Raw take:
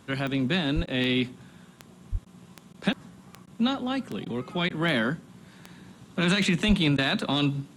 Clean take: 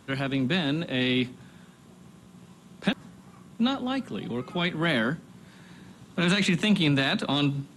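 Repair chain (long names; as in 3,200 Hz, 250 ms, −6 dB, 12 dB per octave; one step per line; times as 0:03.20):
click removal
high-pass at the plosives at 0:00.75/0:02.11/0:06.67
repair the gap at 0:00.86/0:02.25/0:02.73/0:03.46/0:04.25/0:04.69/0:06.97, 11 ms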